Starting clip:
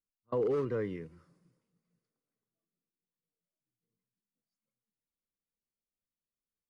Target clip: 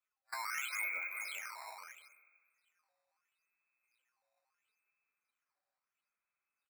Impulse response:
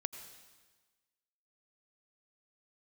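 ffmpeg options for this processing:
-filter_complex "[0:a]areverse,acompressor=threshold=0.00794:ratio=8,areverse,flanger=delay=4.5:depth=3.9:regen=28:speed=0.41:shape=sinusoidal,aecho=1:1:170|403|724|855:0.15|0.531|0.2|0.237,lowpass=f=2200:t=q:w=0.5098,lowpass=f=2200:t=q:w=0.6013,lowpass=f=2200:t=q:w=0.9,lowpass=f=2200:t=q:w=2.563,afreqshift=-2600,equalizer=f=1300:w=1.7:g=10.5,asoftclip=type=hard:threshold=0.0133[s0];[1:a]atrim=start_sample=2205[s1];[s0][s1]afir=irnorm=-1:irlink=0,acrusher=samples=8:mix=1:aa=0.000001:lfo=1:lforange=12.8:lforate=0.75,volume=2.24"

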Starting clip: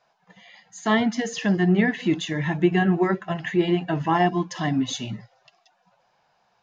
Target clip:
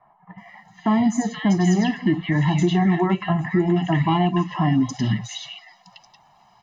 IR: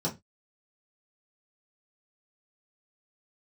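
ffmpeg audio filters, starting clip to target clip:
-filter_complex "[0:a]aecho=1:1:1:0.83,acrossover=split=460|1300[s0][s1][s2];[s0]acompressor=threshold=0.0631:ratio=4[s3];[s1]acompressor=threshold=0.0251:ratio=4[s4];[s2]acompressor=threshold=0.0112:ratio=4[s5];[s3][s4][s5]amix=inputs=3:normalize=0,asplit=2[s6][s7];[s7]alimiter=limit=0.0794:level=0:latency=1:release=80,volume=1.26[s8];[s6][s8]amix=inputs=2:normalize=0,acrossover=split=1700|5100[s9][s10][s11];[s11]adelay=380[s12];[s10]adelay=480[s13];[s9][s13][s12]amix=inputs=3:normalize=0,volume=1.19"

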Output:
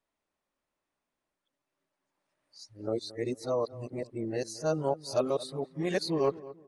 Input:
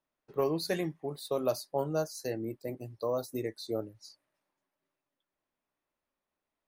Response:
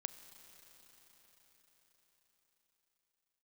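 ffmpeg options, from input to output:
-filter_complex "[0:a]areverse,aresample=22050,aresample=44100,asplit=2[s0][s1];[s1]adelay=224,lowpass=f=1400:p=1,volume=0.141,asplit=2[s2][s3];[s3]adelay=224,lowpass=f=1400:p=1,volume=0.35,asplit=2[s4][s5];[s5]adelay=224,lowpass=f=1400:p=1,volume=0.35[s6];[s0][s2][s4][s6]amix=inputs=4:normalize=0,volume=1.26"

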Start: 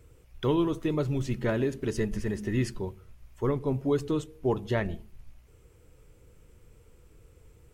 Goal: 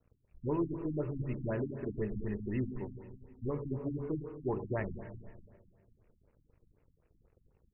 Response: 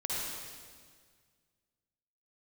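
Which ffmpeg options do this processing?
-filter_complex "[0:a]bandreject=f=46.34:t=h:w=4,bandreject=f=92.68:t=h:w=4,bandreject=f=139.02:t=h:w=4,bandreject=f=185.36:t=h:w=4,bandreject=f=231.7:t=h:w=4,bandreject=f=278.04:t=h:w=4,bandreject=f=324.38:t=h:w=4,bandreject=f=370.72:t=h:w=4,bandreject=f=417.06:t=h:w=4,bandreject=f=463.4:t=h:w=4,bandreject=f=509.74:t=h:w=4,aeval=exprs='sgn(val(0))*max(abs(val(0))-0.00168,0)':c=same,asplit=2[s0][s1];[1:a]atrim=start_sample=2205,adelay=20[s2];[s1][s2]afir=irnorm=-1:irlink=0,volume=0.237[s3];[s0][s3]amix=inputs=2:normalize=0,afftfilt=real='re*lt(b*sr/1024,280*pow(3000/280,0.5+0.5*sin(2*PI*4*pts/sr)))':imag='im*lt(b*sr/1024,280*pow(3000/280,0.5+0.5*sin(2*PI*4*pts/sr)))':win_size=1024:overlap=0.75,volume=0.473"

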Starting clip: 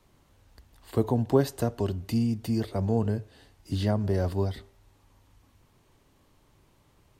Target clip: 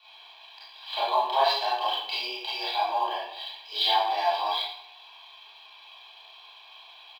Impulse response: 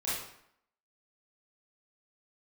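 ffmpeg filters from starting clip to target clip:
-filter_complex "[0:a]aecho=1:1:1.3:0.95,aexciter=amount=9:drive=7.5:freq=2500,asplit=2[s0][s1];[s1]acompressor=threshold=0.02:ratio=5,volume=1.06[s2];[s0][s2]amix=inputs=2:normalize=0,highpass=f=460:t=q:w=0.5412,highpass=f=460:t=q:w=1.307,lowpass=f=3500:t=q:w=0.5176,lowpass=f=3500:t=q:w=0.7071,lowpass=f=3500:t=q:w=1.932,afreqshift=140,highshelf=f=2700:g=-7.5[s3];[1:a]atrim=start_sample=2205[s4];[s3][s4]afir=irnorm=-1:irlink=0" -ar 44100 -c:a adpcm_ima_wav

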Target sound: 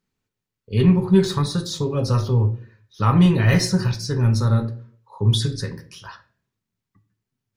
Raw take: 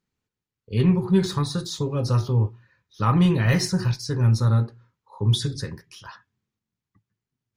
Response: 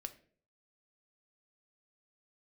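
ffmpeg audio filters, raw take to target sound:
-filter_complex "[1:a]atrim=start_sample=2205[s0];[0:a][s0]afir=irnorm=-1:irlink=0,volume=2.11"

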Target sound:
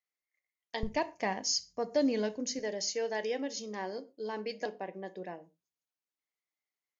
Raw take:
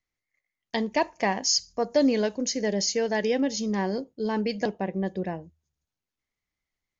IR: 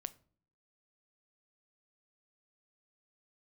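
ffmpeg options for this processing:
-filter_complex "[0:a]asetnsamples=n=441:p=0,asendcmd='0.83 highpass f 56;2.59 highpass f 350',highpass=380[s0];[1:a]atrim=start_sample=2205,atrim=end_sample=6174[s1];[s0][s1]afir=irnorm=-1:irlink=0,volume=0.596"

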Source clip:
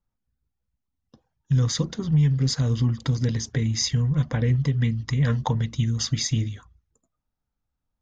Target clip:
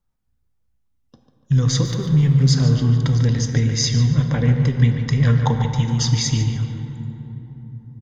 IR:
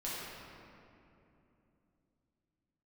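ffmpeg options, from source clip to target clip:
-filter_complex "[0:a]asplit=2[s0][s1];[s1]adelay=145,lowpass=f=3600:p=1,volume=0.398,asplit=2[s2][s3];[s3]adelay=145,lowpass=f=3600:p=1,volume=0.47,asplit=2[s4][s5];[s5]adelay=145,lowpass=f=3600:p=1,volume=0.47,asplit=2[s6][s7];[s7]adelay=145,lowpass=f=3600:p=1,volume=0.47,asplit=2[s8][s9];[s9]adelay=145,lowpass=f=3600:p=1,volume=0.47[s10];[s0][s2][s4][s6][s8][s10]amix=inputs=6:normalize=0,asettb=1/sr,asplit=3[s11][s12][s13];[s11]atrim=end=1.854[s14];[s12]atrim=start=1.85:end=2.5,asetpts=PTS-STARTPTS,afade=t=in:d=0.004:c=qsin,afade=t=out:st=0.646:d=0.004:c=qsin,aeval=exprs='sgn(val(0))*max(abs(val(0))-0.00335,0)':c=same[s15];[s13]atrim=start=2.496[s16];[s14][s15]acrossfade=d=0.004:c1=hsin:c2=qsin[s17];[s17][s16]acrossfade=d=0.004:c1=qsin:c2=hsin,asplit=2[s18][s19];[1:a]atrim=start_sample=2205,asetrate=32193,aresample=44100[s20];[s19][s20]afir=irnorm=-1:irlink=0,volume=0.335[s21];[s18][s21]amix=inputs=2:normalize=0,volume=1.26"

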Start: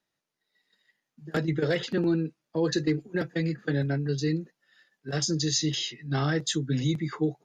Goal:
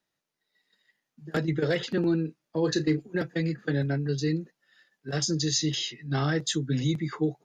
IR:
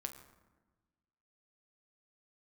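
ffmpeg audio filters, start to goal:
-filter_complex "[0:a]asettb=1/sr,asplit=3[s0][s1][s2];[s0]atrim=end=2.254[s3];[s1]atrim=start=2.25:end=2.97,asetpts=PTS-STARTPTS,afade=t=in:d=0.004:c=qsin,afade=t=out:st=0.716:d=0.004:c=qsin,asplit=2[s4][s5];[s5]adelay=32,volume=0.251[s6];[s4][s6]amix=inputs=2:normalize=0,atrim=end_sample=31752[s7];[s2]atrim=start=2.966[s8];[s3][s7]acrossfade=d=0.004:c1=hsin:c2=qsin[s9];[s9][s8]acrossfade=d=0.004:c1=qsin:c2=hsin"

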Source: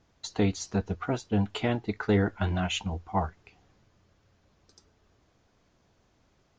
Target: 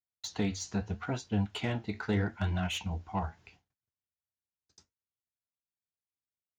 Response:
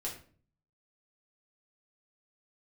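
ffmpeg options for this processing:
-filter_complex "[0:a]agate=range=0.00891:threshold=0.00126:ratio=16:detection=peak,highpass=56,equalizer=f=430:t=o:w=1.8:g=-6.5,bandreject=f=1200:w=11,asplit=2[s0][s1];[s1]acompressor=threshold=0.02:ratio=6,volume=0.794[s2];[s0][s2]amix=inputs=2:normalize=0,flanger=delay=9:depth=7.1:regen=-65:speed=0.79:shape=sinusoidal,acrossover=split=670[s3][s4];[s4]asoftclip=type=tanh:threshold=0.0335[s5];[s3][s5]amix=inputs=2:normalize=0"

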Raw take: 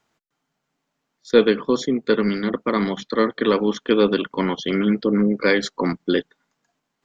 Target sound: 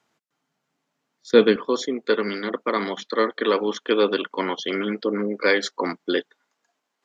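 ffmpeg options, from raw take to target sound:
-af "asetnsamples=n=441:p=0,asendcmd='1.56 highpass f 370',highpass=120" -ar 32000 -c:a libvorbis -b:a 128k

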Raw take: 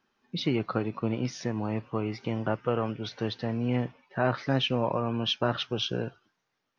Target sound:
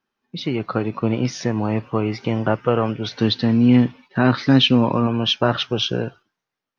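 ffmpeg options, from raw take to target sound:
-filter_complex "[0:a]asettb=1/sr,asplit=3[s0][s1][s2];[s0]atrim=end=3.174[s3];[s1]atrim=start=3.17:end=5.07,asetpts=PTS-STARTPTS,afade=t=in:d=0.004:c=qsin,afade=t=out:st=1.896:d=0.004:c=qsin,equalizer=f=100:t=o:w=0.67:g=3,equalizer=f=250:t=o:w=0.67:g=8,equalizer=f=630:t=o:w=0.67:g=-6,equalizer=f=4000:t=o:w=0.67:g=8[s4];[s2]atrim=start=5.066[s5];[s3][s4]acrossfade=d=0.004:c1=hsin:c2=qsin[s6];[s6][s5]acrossfade=d=0.004:c1=qsin:c2=hsin,dynaudnorm=f=110:g=13:m=2.51,agate=range=0.447:threshold=0.00631:ratio=16:detection=peak,volume=1.19"

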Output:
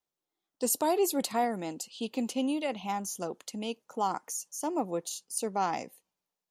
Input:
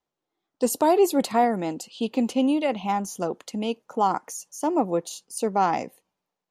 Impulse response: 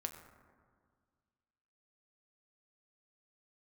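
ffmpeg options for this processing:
-af "highshelf=f=3500:g=10,volume=0.376"

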